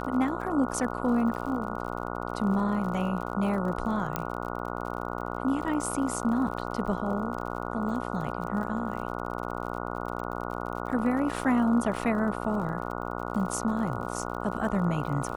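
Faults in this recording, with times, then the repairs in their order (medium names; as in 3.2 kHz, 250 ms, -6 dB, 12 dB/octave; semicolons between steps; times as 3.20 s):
buzz 60 Hz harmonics 24 -34 dBFS
crackle 54 per s -37 dBFS
4.16 s: pop -13 dBFS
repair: de-click; de-hum 60 Hz, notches 24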